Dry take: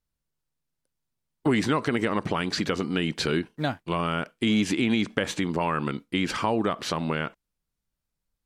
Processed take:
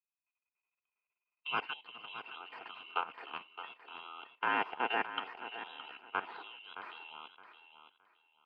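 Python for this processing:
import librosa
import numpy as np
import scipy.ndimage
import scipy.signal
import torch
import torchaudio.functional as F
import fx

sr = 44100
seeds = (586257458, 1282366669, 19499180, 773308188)

y = fx.band_swap(x, sr, width_hz=2000)
y = fx.ladder_bandpass(y, sr, hz=870.0, resonance_pct=25)
y = fx.level_steps(y, sr, step_db=14)
y = fx.notch_comb(y, sr, f0_hz=570.0)
y = fx.formant_shift(y, sr, semitones=4)
y = fx.air_absorb(y, sr, metres=380.0)
y = fx.echo_feedback(y, sr, ms=617, feedback_pct=24, wet_db=-9.5)
y = fx.upward_expand(y, sr, threshold_db=-52.0, expansion=1.5)
y = F.gain(torch.from_numpy(y), 16.0).numpy()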